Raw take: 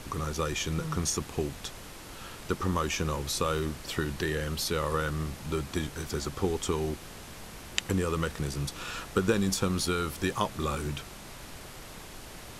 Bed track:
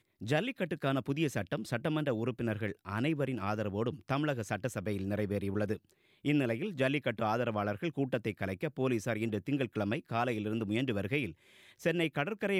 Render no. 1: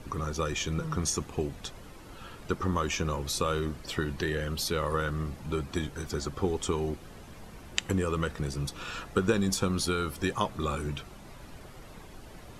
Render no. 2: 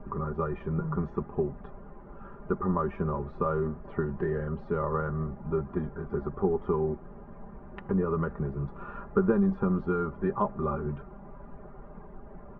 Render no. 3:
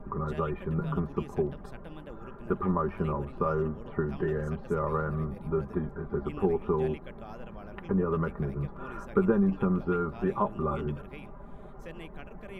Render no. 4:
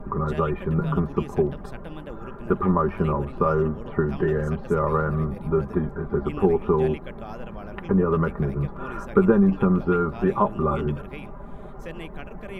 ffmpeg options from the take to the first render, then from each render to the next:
-af "afftdn=nr=10:nf=-46"
-af "lowpass=f=1300:w=0.5412,lowpass=f=1300:w=1.3066,aecho=1:1:5:0.7"
-filter_complex "[1:a]volume=0.188[s0];[0:a][s0]amix=inputs=2:normalize=0"
-af "volume=2.24"

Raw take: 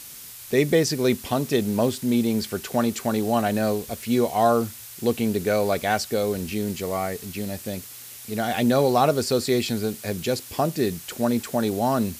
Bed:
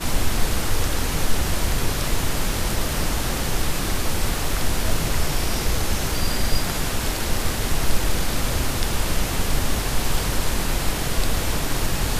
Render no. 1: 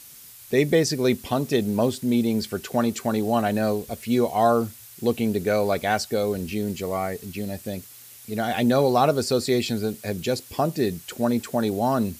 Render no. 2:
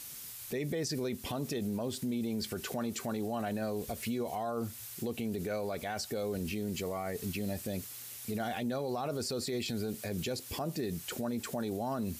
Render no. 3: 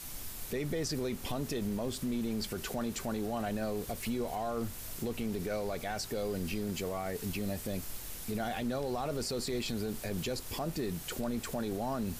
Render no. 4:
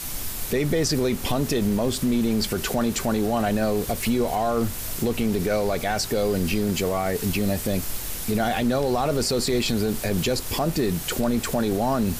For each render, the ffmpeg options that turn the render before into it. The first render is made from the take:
-af "afftdn=nr=6:nf=-41"
-af "acompressor=threshold=0.0398:ratio=3,alimiter=level_in=1.41:limit=0.0631:level=0:latency=1:release=33,volume=0.708"
-filter_complex "[1:a]volume=0.0501[s0];[0:a][s0]amix=inputs=2:normalize=0"
-af "volume=3.98"

